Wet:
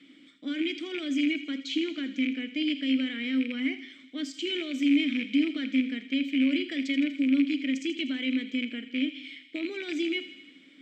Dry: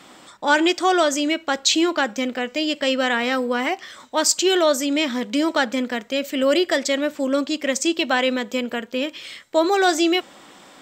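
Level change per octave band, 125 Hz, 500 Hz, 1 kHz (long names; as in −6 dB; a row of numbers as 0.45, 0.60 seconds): can't be measured, −18.5 dB, below −30 dB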